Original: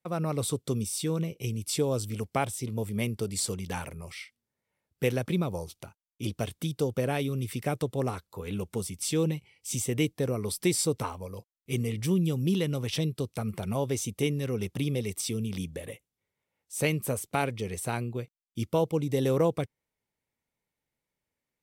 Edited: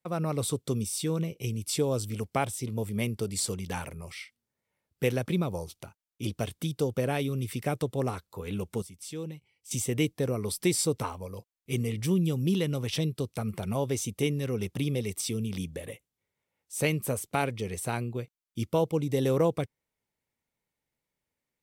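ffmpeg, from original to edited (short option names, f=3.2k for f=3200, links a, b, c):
-filter_complex "[0:a]asplit=3[a][b][c];[a]atrim=end=8.822[d];[b]atrim=start=8.818:end=9.712,asetpts=PTS-STARTPTS,volume=-10.5dB[e];[c]atrim=start=9.708[f];[d][e]acrossfade=d=0.004:c1=hsin:c2=hsin[g];[g][f]acrossfade=d=0.004:c1=hsin:c2=hsin"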